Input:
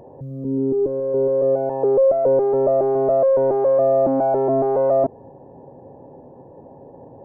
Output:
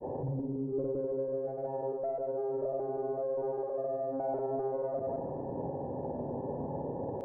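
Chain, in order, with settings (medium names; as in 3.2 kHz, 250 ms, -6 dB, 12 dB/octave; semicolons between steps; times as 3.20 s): low-pass 1.4 kHz 6 dB/octave; compressor with a negative ratio -24 dBFS, ratio -0.5; peak limiter -29 dBFS, peak gain reduction 19 dB; granulator, pitch spread up and down by 0 st; two-band feedback delay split 620 Hz, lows 165 ms, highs 121 ms, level -9 dB; trim +1 dB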